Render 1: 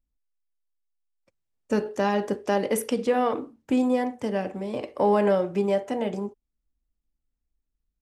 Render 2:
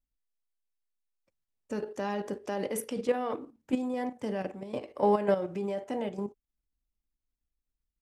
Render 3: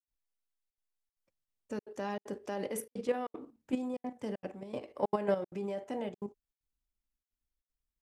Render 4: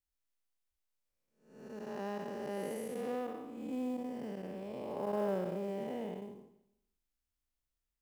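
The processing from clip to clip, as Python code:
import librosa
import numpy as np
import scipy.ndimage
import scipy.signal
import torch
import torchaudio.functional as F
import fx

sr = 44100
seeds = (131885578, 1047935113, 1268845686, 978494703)

y1 = fx.level_steps(x, sr, step_db=10)
y1 = F.gain(torch.from_numpy(y1), -2.0).numpy()
y2 = fx.step_gate(y1, sr, bpm=193, pattern='.xxxxxxxx.xxxx', floor_db=-60.0, edge_ms=4.5)
y2 = F.gain(torch.from_numpy(y2), -4.0).numpy()
y3 = fx.spec_blur(y2, sr, span_ms=327.0)
y3 = fx.quant_float(y3, sr, bits=4)
y3 = fx.echo_feedback(y3, sr, ms=158, feedback_pct=42, wet_db=-21.5)
y3 = F.gain(torch.from_numpy(y3), 2.5).numpy()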